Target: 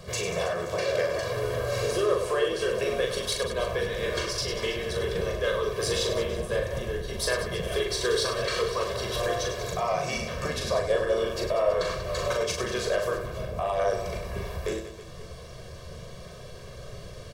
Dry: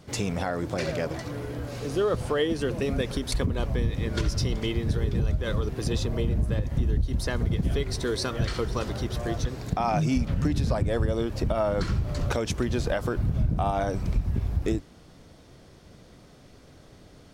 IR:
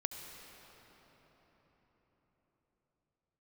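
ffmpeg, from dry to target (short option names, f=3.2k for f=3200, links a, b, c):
-filter_complex "[0:a]bandreject=f=50:t=h:w=6,bandreject=f=100:t=h:w=6,bandreject=f=150:t=h:w=6,bandreject=f=200:t=h:w=6,bandreject=f=250:t=h:w=6,bandreject=f=300:t=h:w=6,bandreject=f=350:t=h:w=6,acrossover=split=300[a][b];[a]acompressor=threshold=-45dB:ratio=8[c];[c][b]amix=inputs=2:normalize=0,alimiter=level_in=0.5dB:limit=-24dB:level=0:latency=1:release=468,volume=-0.5dB,asplit=2[d][e];[e]asetrate=37084,aresample=44100,atempo=1.18921,volume=-7dB[f];[d][f]amix=inputs=2:normalize=0,aecho=1:1:1.8:0.93,asplit=2[g][h];[h]asoftclip=type=tanh:threshold=-28.5dB,volume=-4.5dB[i];[g][i]amix=inputs=2:normalize=0,aecho=1:1:40|100|190|325|527.5:0.631|0.398|0.251|0.158|0.1"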